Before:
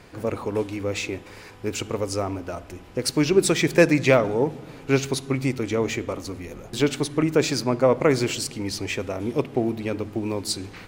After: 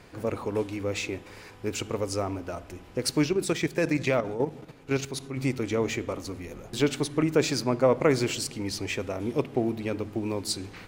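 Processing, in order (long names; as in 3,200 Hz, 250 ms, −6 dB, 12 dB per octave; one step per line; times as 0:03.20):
0:03.26–0:05.37: output level in coarse steps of 10 dB
level −3 dB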